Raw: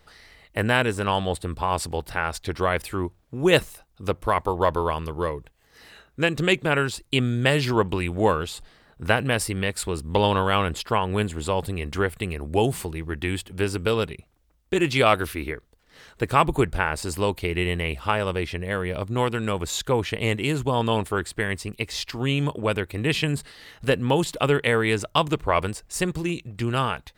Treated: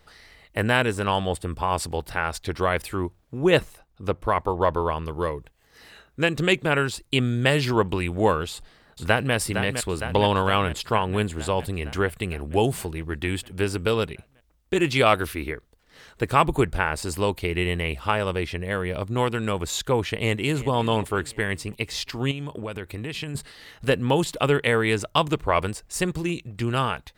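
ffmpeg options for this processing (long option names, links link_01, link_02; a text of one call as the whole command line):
ffmpeg -i in.wav -filter_complex "[0:a]asettb=1/sr,asplit=3[link_01][link_02][link_03];[link_01]atrim=end=1.164[link_04];[link_02]atrim=start=1.16:end=1.79,asetpts=PTS-STARTPTS,afade=type=in:duration=0.004:curve=qsin,afade=type=out:start_time=0.626:duration=0.004:curve=qsin,bandreject=frequency=4000:width=7.6[link_05];[link_03]atrim=start=1.786[link_06];[link_04][link_05]acrossfade=duration=0.004:curve1=hsin:curve2=qsin[link_07];[link_07][link_06]acrossfade=duration=0.004:curve1=qsin:curve2=hsin,asettb=1/sr,asplit=3[link_08][link_09][link_10];[link_08]atrim=end=3.394[link_11];[link_09]atrim=start=3.39:end=5.08,asetpts=PTS-STARTPTS,afade=type=in:duration=0.004:curve=qsin,afade=type=out:start_time=1.686:duration=0.004:curve=qsin,highshelf=frequency=4000:gain=-8.5[link_12];[link_10]atrim=start=5.076[link_13];[link_11][link_12]acrossfade=duration=0.004:curve1=hsin:curve2=qsin[link_14];[link_14][link_13]acrossfade=duration=0.004:curve1=qsin:curve2=hsin,asplit=2[link_15][link_16];[link_16]afade=type=in:start_time=8.51:duration=0.01,afade=type=out:start_time=9.34:duration=0.01,aecho=0:1:460|920|1380|1840|2300|2760|3220|3680|4140|4600|5060:0.421697|0.295188|0.206631|0.144642|0.101249|0.0708745|0.0496122|0.0347285|0.02431|0.017017|0.0119119[link_17];[link_15][link_17]amix=inputs=2:normalize=0,asplit=2[link_18][link_19];[link_19]afade=type=in:start_time=20.11:duration=0.01,afade=type=out:start_time=20.69:duration=0.01,aecho=0:1:350|700|1050|1400:0.149624|0.0748118|0.0374059|0.0187029[link_20];[link_18][link_20]amix=inputs=2:normalize=0,asettb=1/sr,asplit=3[link_21][link_22][link_23];[link_21]atrim=end=22.314[link_24];[link_22]atrim=start=22.31:end=23.35,asetpts=PTS-STARTPTS,afade=type=in:duration=0.004:curve=qsin,afade=type=out:start_time=1.036:duration=0.004:curve=qsin,acompressor=threshold=-28dB:ratio=6:attack=3.2:release=140:knee=1:detection=peak[link_25];[link_23]atrim=start=23.346[link_26];[link_24][link_25]acrossfade=duration=0.004:curve1=hsin:curve2=qsin[link_27];[link_27][link_26]acrossfade=duration=0.004:curve1=qsin:curve2=hsin" out.wav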